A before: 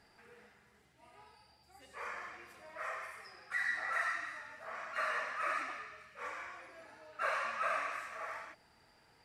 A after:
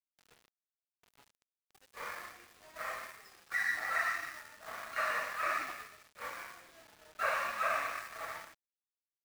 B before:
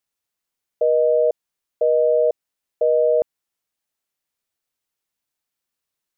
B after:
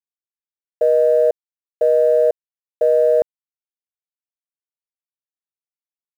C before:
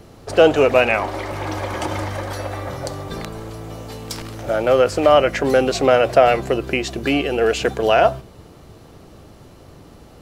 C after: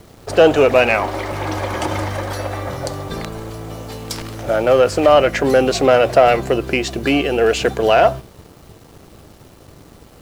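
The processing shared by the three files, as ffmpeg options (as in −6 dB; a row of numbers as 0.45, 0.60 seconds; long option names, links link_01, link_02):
-filter_complex "[0:a]asplit=2[link_01][link_02];[link_02]acontrast=58,volume=1dB[link_03];[link_01][link_03]amix=inputs=2:normalize=0,acrusher=bits=6:mix=0:aa=0.000001,aeval=exprs='sgn(val(0))*max(abs(val(0))-0.01,0)':channel_layout=same,volume=-7dB"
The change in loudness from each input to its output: +2.0, +2.5, +2.0 LU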